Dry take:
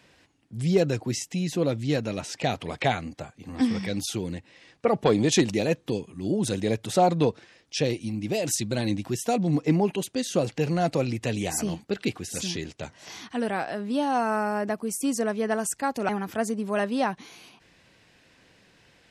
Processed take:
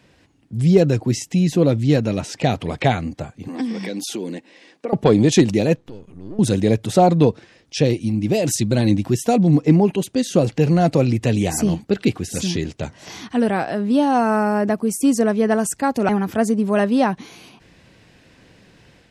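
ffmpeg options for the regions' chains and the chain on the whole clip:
-filter_complex "[0:a]asettb=1/sr,asplit=3[a][b][c];[a]atrim=end=3.484[d];[b]atrim=start=3.48:end=4.93,asetpts=PTS-STARTPTS,afade=t=in:d=0.004:c=qsin,afade=t=out:st=1.446:d=0.004:c=qsin,acompressor=threshold=-28dB:ratio=10:attack=3.2:release=140:knee=1:detection=peak,highpass=f=230:w=0.5412,highpass=f=230:w=1.3066,bandreject=f=1.3k:w=11[e];[c]atrim=start=4.926[f];[d][e]acrossfade=d=0.004:c1=hsin:c2=qsin[g];[g][f]acrossfade=d=0.004:c1=qsin:c2=hsin,asettb=1/sr,asplit=3[h][i][j];[h]atrim=end=5.764[k];[i]atrim=start=5.76:end=6.39,asetpts=PTS-STARTPTS,afade=t=in:d=0.004:c=qsin,afade=t=out:st=0.626:d=0.004:c=qsin,aeval=exprs='if(lt(val(0),0),0.251*val(0),val(0))':c=same,highshelf=f=6.1k:g=-8,acompressor=threshold=-51dB:ratio=2:attack=3.2:release=140:knee=1:detection=peak[l];[j]atrim=start=6.386[m];[k][l]acrossfade=d=0.004:c1=hsin:c2=qsin[n];[n][m]acrossfade=d=0.004:c1=qsin:c2=hsin,lowshelf=f=470:g=8,dynaudnorm=f=200:g=3:m=4.5dB"

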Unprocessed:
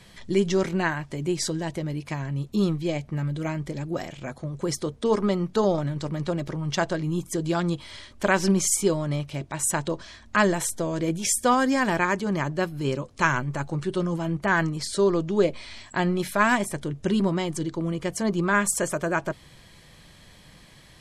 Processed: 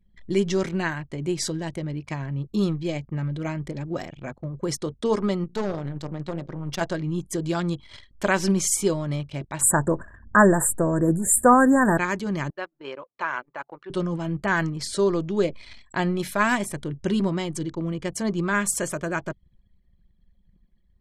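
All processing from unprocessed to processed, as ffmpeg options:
-filter_complex "[0:a]asettb=1/sr,asplit=3[a][b][c];[a]atrim=end=5.444[d];[b]atrim=start=5.44:end=6.81,asetpts=PTS-STARTPTS,afade=t=in:d=0.004:c=qsin,afade=t=out:st=1.366:d=0.004:c=qsin,bandreject=f=58.6:t=h:w=4,bandreject=f=117.2:t=h:w=4,bandreject=f=175.8:t=h:w=4,bandreject=f=234.4:t=h:w=4,bandreject=f=293:t=h:w=4,bandreject=f=351.6:t=h:w=4,bandreject=f=410.2:t=h:w=4,bandreject=f=468.8:t=h:w=4,bandreject=f=527.4:t=h:w=4,bandreject=f=586:t=h:w=4,bandreject=f=644.6:t=h:w=4,bandreject=f=703.2:t=h:w=4,bandreject=f=761.8:t=h:w=4,bandreject=f=820.4:t=h:w=4,bandreject=f=879:t=h:w=4,bandreject=f=937.6:t=h:w=4,bandreject=f=996.2:t=h:w=4,bandreject=f=1.0548k:t=h:w=4,bandreject=f=1.1134k:t=h:w=4,bandreject=f=1.172k:t=h:w=4,bandreject=f=1.2306k:t=h:w=4,bandreject=f=1.2892k:t=h:w=4,bandreject=f=1.3478k:t=h:w=4,bandreject=f=1.4064k:t=h:w=4,bandreject=f=1.465k:t=h:w=4,bandreject=f=1.5236k:t=h:w=4,bandreject=f=1.5822k:t=h:w=4,bandreject=f=1.6408k:t=h:w=4,bandreject=f=1.6994k:t=h:w=4,bandreject=f=1.758k:t=h:w=4,aeval=exprs='(tanh(11.2*val(0)+0.7)-tanh(0.7))/11.2':c=same[e];[c]atrim=start=6.806[f];[d][e]acrossfade=d=0.004:c1=hsin:c2=qsin[g];[g][f]acrossfade=d=0.004:c1=qsin:c2=hsin,asettb=1/sr,asplit=3[h][i][j];[h]atrim=end=9.614[k];[i]atrim=start=9.61:end=11.98,asetpts=PTS-STARTPTS,afade=t=in:d=0.004:c=qsin,afade=t=out:st=2.366:d=0.004:c=qsin,acontrast=69,asuperstop=centerf=3700:order=20:qfactor=0.67[l];[j]atrim=start=11.976[m];[k][l]acrossfade=d=0.004:c1=hsin:c2=qsin[n];[n][m]acrossfade=d=0.004:c1=qsin:c2=hsin,asettb=1/sr,asplit=3[o][p][q];[o]atrim=end=12.504[r];[p]atrim=start=12.5:end=13.9,asetpts=PTS-STARTPTS,afade=t=in:d=0.004:c=qsin,afade=t=out:st=1.396:d=0.004:c=qsin,deesser=0.9,highpass=630,lowpass=3.1k[s];[q]atrim=start=13.896[t];[r][s]acrossfade=d=0.004:c1=hsin:c2=qsin[u];[u][t]acrossfade=d=0.004:c1=qsin:c2=hsin,anlmdn=0.398,adynamicequalizer=threshold=0.0158:dfrequency=760:dqfactor=0.73:tfrequency=760:tqfactor=0.73:attack=5:release=100:ratio=0.375:range=2.5:mode=cutabove:tftype=bell"

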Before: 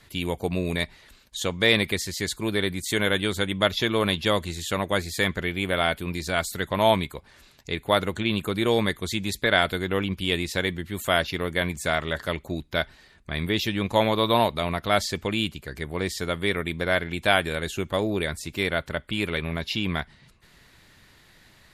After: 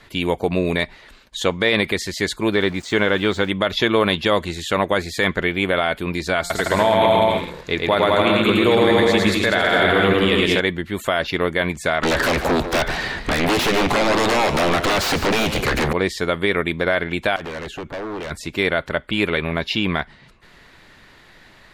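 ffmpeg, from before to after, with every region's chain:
-filter_complex "[0:a]asettb=1/sr,asplit=3[a][b][c];[a]atrim=end=2.534[d];[b]atrim=start=2.53:end=3.5,asetpts=PTS-STARTPTS,afade=t=in:d=0.004:c=qsin,afade=t=out:st=0.966:d=0.004:c=qsin,lowpass=f=7.3k:w=0.5412,lowpass=f=7.3k:w=1.3066,deesser=0.75,aeval=exprs='val(0)*gte(abs(val(0)),0.0075)':c=same[e];[c]atrim=start=3.496[f];[d][e]acrossfade=d=0.004:c1=hsin:c2=qsin[g];[g][f]acrossfade=d=0.004:c1=qsin:c2=hsin,asettb=1/sr,asplit=3[h][i][j];[h]atrim=end=6.394[k];[i]atrim=start=6.39:end=10.6,asetpts=PTS-STARTPTS,afade=t=in:d=0.004:c=qsin,afade=t=out:st=4.206:d=0.004:c=qsin,bandreject=f=174.5:t=h:w=4,bandreject=f=349:t=h:w=4,bandreject=f=523.5:t=h:w=4,bandreject=f=698:t=h:w=4,bandreject=f=872.5:t=h:w=4,bandreject=f=1.047k:t=h:w=4,bandreject=f=1.2215k:t=h:w=4,bandreject=f=1.396k:t=h:w=4,bandreject=f=1.5705k:t=h:w=4,bandreject=f=1.745k:t=h:w=4,bandreject=f=1.9195k:t=h:w=4,bandreject=f=2.094k:t=h:w=4,bandreject=f=2.2685k:t=h:w=4,aecho=1:1:110|198|268.4|324.7|369.8|405.8|434.7|457.7:0.794|0.631|0.501|0.398|0.316|0.251|0.2|0.158,atrim=end_sample=185661[l];[j]atrim=start=10.596[m];[k][l]acrossfade=d=0.004:c1=hsin:c2=qsin[n];[n][m]acrossfade=d=0.004:c1=qsin:c2=hsin,asettb=1/sr,asplit=3[o][p][q];[o]atrim=end=12.034[r];[p]atrim=start=12.03:end=15.93,asetpts=PTS-STARTPTS,afade=t=in:d=0.004:c=qsin,afade=t=out:st=3.896:d=0.004:c=qsin,acompressor=threshold=-33dB:ratio=8:attack=3.2:release=140:knee=1:detection=peak,aeval=exprs='0.075*sin(PI/2*7.08*val(0)/0.075)':c=same,asplit=4[s][t][u][v];[t]adelay=148,afreqshift=84,volume=-11dB[w];[u]adelay=296,afreqshift=168,volume=-20.9dB[x];[v]adelay=444,afreqshift=252,volume=-30.8dB[y];[s][w][x][y]amix=inputs=4:normalize=0,atrim=end_sample=171990[z];[q]atrim=start=15.926[aa];[r][z]acrossfade=d=0.004:c1=hsin:c2=qsin[ab];[ab][aa]acrossfade=d=0.004:c1=qsin:c2=hsin,asettb=1/sr,asplit=3[ac][ad][ae];[ac]atrim=end=17.364[af];[ad]atrim=start=17.36:end=18.31,asetpts=PTS-STARTPTS,afade=t=in:d=0.004:c=qsin,afade=t=out:st=0.946:d=0.004:c=qsin,highshelf=f=3k:g=-9.5,acompressor=threshold=-27dB:ratio=12:attack=3.2:release=140:knee=1:detection=peak,aeval=exprs='0.0266*(abs(mod(val(0)/0.0266+3,4)-2)-1)':c=same[ag];[ae]atrim=start=18.306[ah];[af][ag]acrossfade=d=0.004:c1=hsin:c2=qsin[ai];[ai][ah]acrossfade=d=0.004:c1=qsin:c2=hsin,lowpass=f=2.3k:p=1,equalizer=f=85:t=o:w=2.7:g=-8.5,alimiter=level_in=15.5dB:limit=-1dB:release=50:level=0:latency=1,volume=-5dB"

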